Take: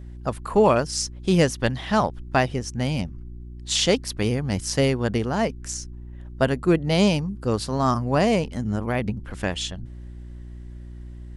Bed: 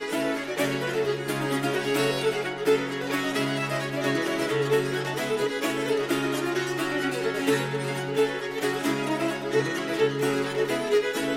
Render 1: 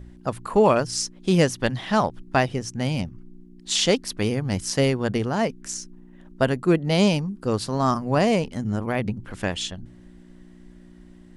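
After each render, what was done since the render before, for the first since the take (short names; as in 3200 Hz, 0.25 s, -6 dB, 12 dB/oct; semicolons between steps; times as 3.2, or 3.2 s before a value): de-hum 60 Hz, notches 2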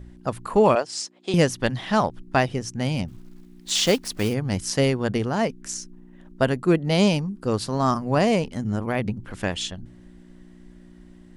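0.75–1.34 speaker cabinet 440–8000 Hz, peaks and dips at 710 Hz +5 dB, 1500 Hz -3 dB, 5900 Hz -7 dB; 3.08–4.34 block floating point 5-bit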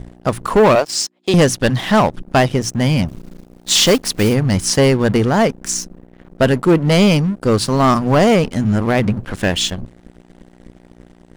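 sample leveller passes 3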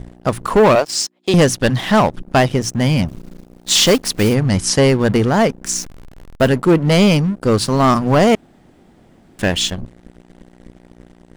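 4.35–4.88 LPF 11000 Hz 24 dB/oct; 5.74–6.48 level-crossing sampler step -31 dBFS; 8.35–9.39 room tone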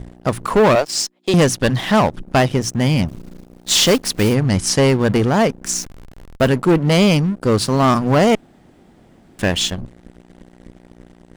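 one diode to ground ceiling -7.5 dBFS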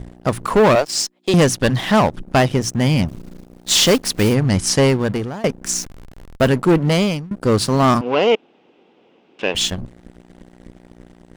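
4.84–5.44 fade out, to -22.5 dB; 6.83–7.31 fade out linear, to -23.5 dB; 8.01–9.55 speaker cabinet 390–4700 Hz, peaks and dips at 460 Hz +6 dB, 660 Hz -6 dB, 1300 Hz -3 dB, 1800 Hz -9 dB, 2700 Hz +8 dB, 4400 Hz -6 dB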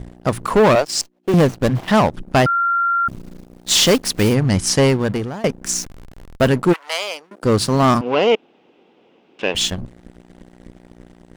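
1.01–1.88 median filter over 25 samples; 2.46–3.08 bleep 1380 Hz -14.5 dBFS; 6.72–7.42 HPF 1100 Hz -> 310 Hz 24 dB/oct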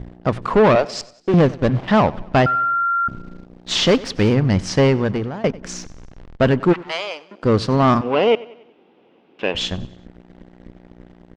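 air absorption 160 m; feedback echo 94 ms, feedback 49%, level -20.5 dB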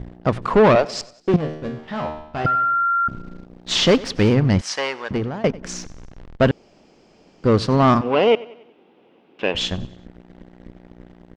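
1.36–2.45 resonator 77 Hz, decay 0.68 s, mix 90%; 4.61–5.11 HPF 880 Hz; 6.51–7.44 room tone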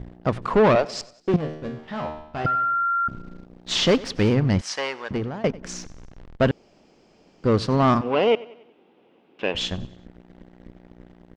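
gain -3.5 dB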